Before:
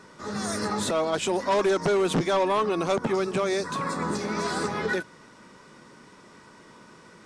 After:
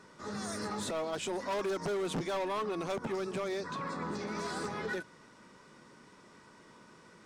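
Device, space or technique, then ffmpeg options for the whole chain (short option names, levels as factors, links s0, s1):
clipper into limiter: -filter_complex "[0:a]asettb=1/sr,asplit=3[s0][s1][s2];[s0]atrim=end=3.484[s3];[s1]atrim=start=3.48:end=4.27,asetpts=PTS-STARTPTS,afade=t=in:d=0.004:c=qsin,afade=t=out:st=0.786:d=0.004:c=qsin,lowpass=5400[s4];[s2]atrim=start=4.266[s5];[s3][s4]acrossfade=d=0.004:c1=hsin:c2=qsin[s6];[s6][s5]acrossfade=d=0.004:c1=qsin:c2=hsin,asoftclip=type=hard:threshold=0.0891,alimiter=limit=0.0668:level=0:latency=1,volume=0.473"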